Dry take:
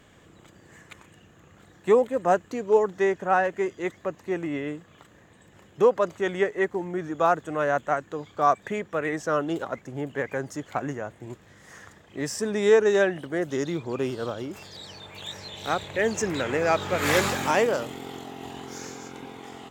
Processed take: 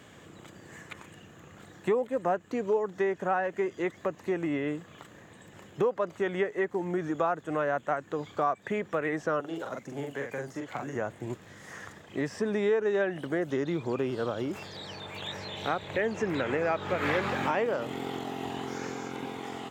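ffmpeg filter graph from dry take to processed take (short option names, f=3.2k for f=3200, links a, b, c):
-filter_complex "[0:a]asettb=1/sr,asplit=3[a][b][c];[a]atrim=end=9.404[d];[b]atrim=start=9.4:end=10.95,asetpts=PTS-STARTPTS,afade=t=in:d=0.004:c=qsin,afade=t=out:st=1.546:d=0.004:c=qsin,highpass=52,acrossover=split=340|3700[e][f][g];[e]acompressor=threshold=-46dB:ratio=4[h];[f]acompressor=threshold=-41dB:ratio=4[i];[g]acompressor=threshold=-57dB:ratio=4[j];[h][i][j]amix=inputs=3:normalize=0,asplit=2[k][l];[l]adelay=43,volume=-3.5dB[m];[k][m]amix=inputs=2:normalize=0,atrim=end_sample=68355[n];[c]atrim=start=10.946[o];[d][n]acrossfade=d=0.004:c1=hsin:c2=qsin[p];[p][o]acrossfade=d=0.004:c1=qsin:c2=hsin,acrossover=split=3400[q][r];[r]acompressor=threshold=-55dB:ratio=4:attack=1:release=60[s];[q][s]amix=inputs=2:normalize=0,highpass=88,acompressor=threshold=-31dB:ratio=3,volume=3.5dB"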